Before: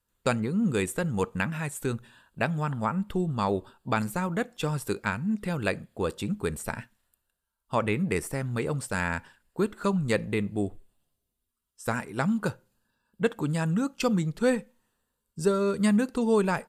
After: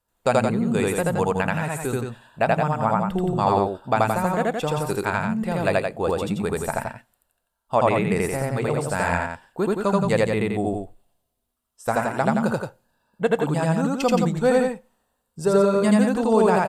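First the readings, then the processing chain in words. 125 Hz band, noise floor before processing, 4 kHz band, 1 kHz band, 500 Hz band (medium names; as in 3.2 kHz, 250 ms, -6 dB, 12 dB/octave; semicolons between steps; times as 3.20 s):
+4.0 dB, -82 dBFS, +4.0 dB, +10.0 dB, +8.0 dB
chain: peaking EQ 710 Hz +10.5 dB 0.89 oct; on a send: loudspeakers at several distances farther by 28 m 0 dB, 59 m -5 dB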